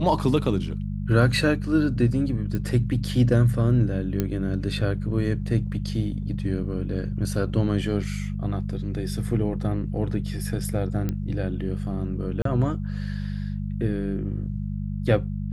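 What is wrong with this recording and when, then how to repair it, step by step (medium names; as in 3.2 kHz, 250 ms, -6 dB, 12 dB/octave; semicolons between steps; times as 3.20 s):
hum 50 Hz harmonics 4 -29 dBFS
2.55 s: pop -17 dBFS
4.20 s: pop -11 dBFS
11.09 s: pop -15 dBFS
12.42–12.45 s: dropout 33 ms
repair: de-click; de-hum 50 Hz, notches 4; interpolate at 12.42 s, 33 ms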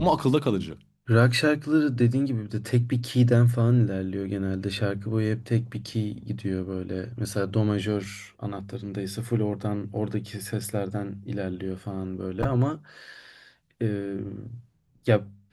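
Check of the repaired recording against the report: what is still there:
nothing left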